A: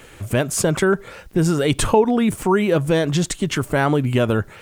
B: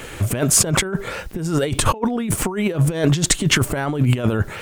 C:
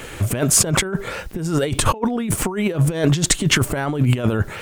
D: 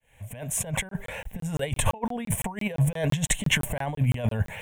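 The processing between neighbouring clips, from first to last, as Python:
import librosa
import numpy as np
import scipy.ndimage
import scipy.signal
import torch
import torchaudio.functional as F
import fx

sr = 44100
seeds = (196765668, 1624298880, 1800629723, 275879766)

y1 = fx.over_compress(x, sr, threshold_db=-22.0, ratio=-0.5)
y1 = y1 * librosa.db_to_amplitude(4.5)
y2 = y1
y3 = fx.fade_in_head(y2, sr, length_s=1.2)
y3 = fx.fixed_phaser(y3, sr, hz=1300.0, stages=6)
y3 = fx.buffer_crackle(y3, sr, first_s=0.89, period_s=0.17, block=1024, kind='zero')
y3 = y3 * librosa.db_to_amplitude(-3.5)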